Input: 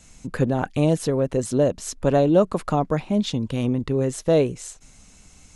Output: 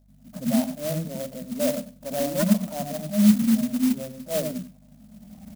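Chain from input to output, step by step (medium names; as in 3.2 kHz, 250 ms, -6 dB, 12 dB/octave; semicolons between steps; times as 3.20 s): recorder AGC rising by 22 dB/s; spectral noise reduction 11 dB; in parallel at -2 dB: compression, threshold -30 dBFS, peak gain reduction 17 dB; on the sum: transient shaper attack -12 dB, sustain +5 dB; two resonant band-passes 380 Hz, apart 1.4 oct; hum 50 Hz, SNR 28 dB; wavefolder -18 dBFS; feedback delay 96 ms, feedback 22%, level -17.5 dB; on a send at -11 dB: reverberation RT60 0.15 s, pre-delay 74 ms; on the sum: careless resampling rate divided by 8×, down filtered, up hold; sampling jitter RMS 0.1 ms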